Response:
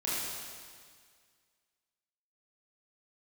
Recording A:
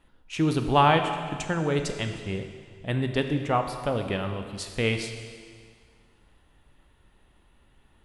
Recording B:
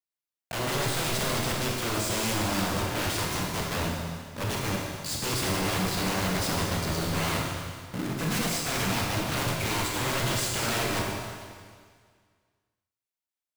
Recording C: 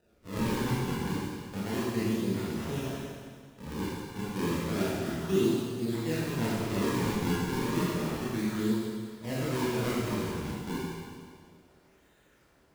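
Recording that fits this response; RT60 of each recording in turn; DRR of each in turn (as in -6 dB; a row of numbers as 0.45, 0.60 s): C; 1.9, 1.9, 1.9 s; 5.5, -2.0, -8.5 dB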